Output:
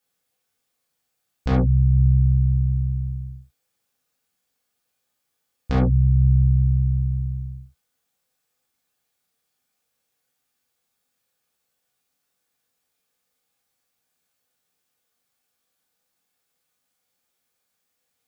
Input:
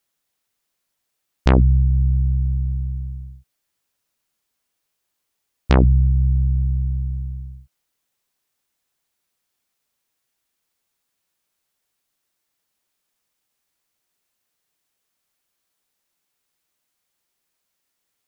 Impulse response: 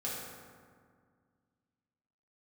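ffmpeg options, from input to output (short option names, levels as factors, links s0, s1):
-filter_complex "[0:a]alimiter=limit=0.299:level=0:latency=1:release=459[s0];[1:a]atrim=start_sample=2205,atrim=end_sample=3528[s1];[s0][s1]afir=irnorm=-1:irlink=0"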